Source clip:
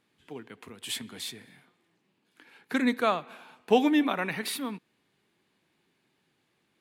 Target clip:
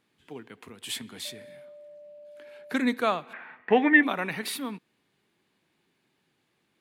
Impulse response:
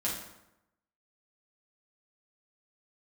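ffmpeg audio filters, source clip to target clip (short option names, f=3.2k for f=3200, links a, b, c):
-filter_complex "[0:a]asettb=1/sr,asplit=3[a][b][c];[a]atrim=end=1.254[d];[b]atrim=start=1.25:end=2.77,asetpts=PTS-STARTPTS,afade=t=in:d=0.004:c=qsin,afade=t=out:st=1.516:d=0.004:c=qsin,aeval=exprs='val(0)+0.00562*sin(2*PI*590*n/s)':c=same[e];[c]atrim=start=2.766[f];[d][e]acrossfade=d=0.004:c1=hsin:c2=qsin[g];[g][f]acrossfade=d=0.004:c1=qsin:c2=hsin,asettb=1/sr,asplit=3[h][i][j];[h]atrim=end=3.334[k];[i]atrim=start=3.33:end=4.03,asetpts=PTS-STARTPTS,afade=t=in:d=0.004:c=qsin,afade=t=out:st=0.696:d=0.004:c=qsin,lowpass=f=1.9k:t=q:w=12[l];[j]atrim=start=4.026[m];[k][l]acrossfade=d=0.004:c1=hsin:c2=qsin[n];[n][m]acrossfade=d=0.004:c1=qsin:c2=hsin"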